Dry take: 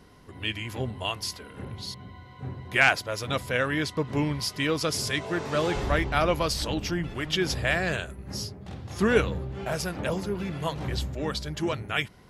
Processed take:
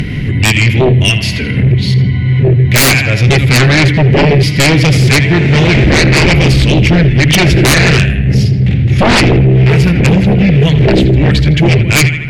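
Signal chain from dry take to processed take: FFT filter 220 Hz 0 dB, 1.1 kHz -24 dB, 2.2 kHz +4 dB, 5.4 kHz -17 dB, 13 kHz -21 dB; tape echo 81 ms, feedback 65%, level -10 dB, low-pass 3.3 kHz; upward compressor, threshold -34 dBFS; peaking EQ 130 Hz +12 dB 0.26 oct; sine folder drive 17 dB, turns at -9.5 dBFS; trim +5.5 dB

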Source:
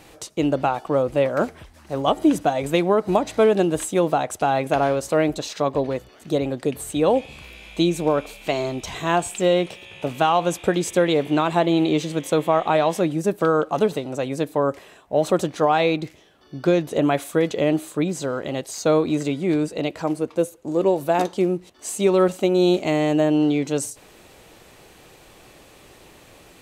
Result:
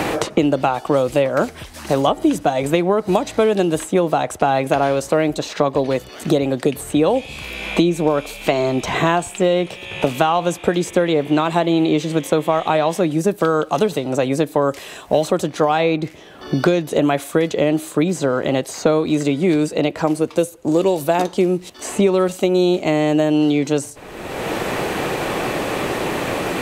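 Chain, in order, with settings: three bands compressed up and down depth 100%; trim +2.5 dB

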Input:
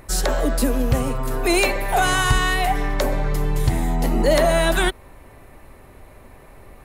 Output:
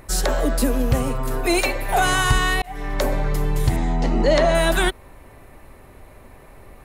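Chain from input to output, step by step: 1.41–1.89 s: comb of notches 200 Hz; 2.62–3.03 s: fade in; 3.76–4.55 s: low-pass 6.5 kHz 24 dB/octave

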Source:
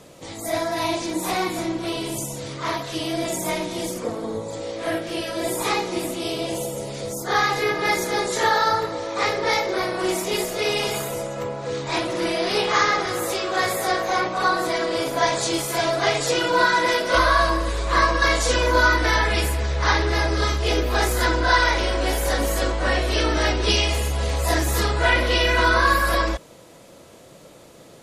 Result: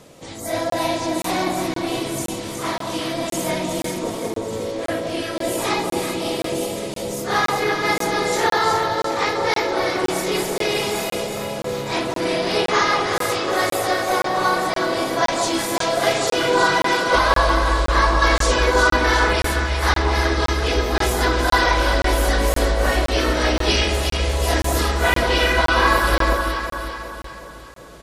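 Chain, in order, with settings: echo whose repeats swap between lows and highs 183 ms, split 1.1 kHz, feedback 71%, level -3 dB; harmony voices -4 st -9 dB; crackling interface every 0.52 s, samples 1024, zero, from 0.70 s

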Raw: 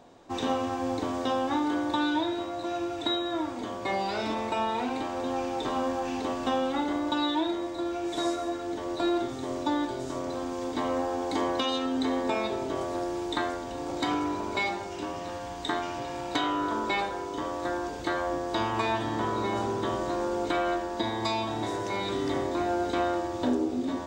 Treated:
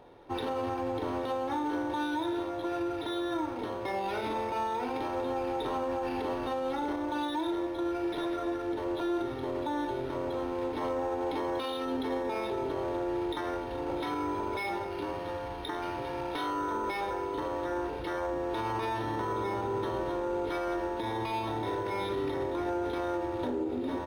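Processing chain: comb 2.2 ms, depth 45%; peak limiter -24 dBFS, peak gain reduction 9 dB; decimation joined by straight lines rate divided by 6×

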